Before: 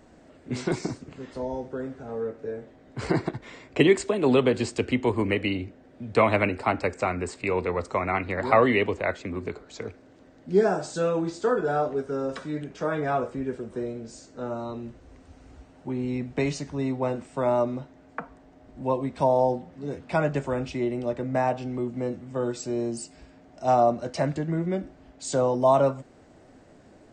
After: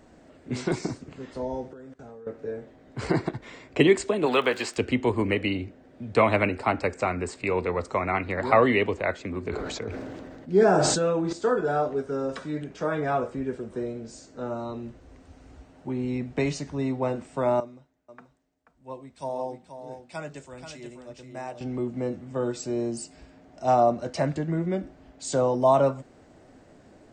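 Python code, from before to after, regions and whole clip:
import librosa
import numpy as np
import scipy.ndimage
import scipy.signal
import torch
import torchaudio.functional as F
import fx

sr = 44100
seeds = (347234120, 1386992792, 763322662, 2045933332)

y = fx.chain(x, sr, fx.peak_eq(hz=7000.0, db=5.0, octaves=1.2),
    fx.level_steps(step_db=22), at=(1.73, 2.27))
y = fx.highpass(y, sr, hz=720.0, slope=6, at=(4.25, 4.76), fade=0.02)
y = fx.peak_eq(y, sr, hz=1500.0, db=8.0, octaves=2.3, at=(4.25, 4.76), fade=0.02)
y = fx.dmg_crackle(y, sr, seeds[0], per_s=76.0, level_db=-36.0, at=(4.25, 4.76), fade=0.02)
y = fx.chain(y, sr, fx.peak_eq(hz=8100.0, db=-4.5, octaves=2.1),
    fx.sustainer(db_per_s=24.0), at=(9.48, 11.33))
y = fx.chain(y, sr, fx.pre_emphasis(coefficient=0.8),
    fx.echo_single(ms=483, db=-6.0),
    fx.band_widen(depth_pct=70), at=(17.6, 21.61))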